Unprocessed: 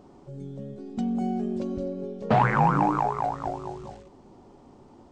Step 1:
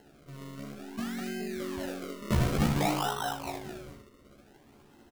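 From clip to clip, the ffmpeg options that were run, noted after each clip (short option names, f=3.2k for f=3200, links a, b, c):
-af "acrusher=samples=37:mix=1:aa=0.000001:lfo=1:lforange=37:lforate=0.55,aecho=1:1:14|76:0.668|0.447,volume=-8dB"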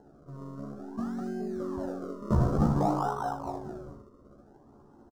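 -af "firequalizer=gain_entry='entry(1200,0);entry(2200,-27);entry(5400,-12);entry(12000,-21)':delay=0.05:min_phase=1,volume=2dB"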